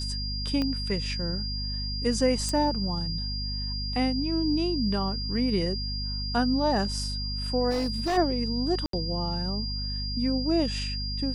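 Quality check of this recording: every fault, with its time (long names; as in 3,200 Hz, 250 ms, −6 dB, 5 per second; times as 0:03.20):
mains hum 50 Hz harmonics 5 −33 dBFS
whistle 4,800 Hz −33 dBFS
0:00.62: click −17 dBFS
0:02.49: click
0:07.70–0:08.18: clipping −23.5 dBFS
0:08.86–0:08.93: drop-out 73 ms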